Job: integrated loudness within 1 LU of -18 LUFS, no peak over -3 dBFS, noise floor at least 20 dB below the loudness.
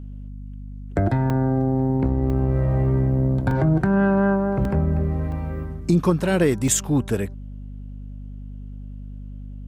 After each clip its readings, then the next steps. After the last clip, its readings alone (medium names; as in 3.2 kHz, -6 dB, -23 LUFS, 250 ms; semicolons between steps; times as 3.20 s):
dropouts 6; longest dropout 1.8 ms; hum 50 Hz; highest harmonic 250 Hz; hum level -33 dBFS; loudness -21.5 LUFS; peak level -8.0 dBFS; loudness target -18.0 LUFS
-> interpolate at 1.30/2.30/3.51/4.65/5.32/6.68 s, 1.8 ms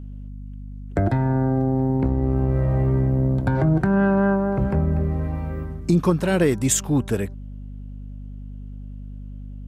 dropouts 0; hum 50 Hz; highest harmonic 250 Hz; hum level -33 dBFS
-> de-hum 50 Hz, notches 5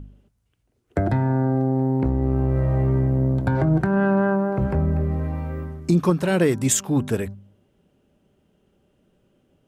hum not found; loudness -21.5 LUFS; peak level -7.5 dBFS; loudness target -18.0 LUFS
-> trim +3.5 dB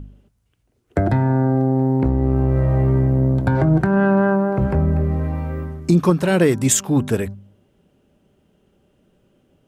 loudness -18.0 LUFS; peak level -4.0 dBFS; noise floor -65 dBFS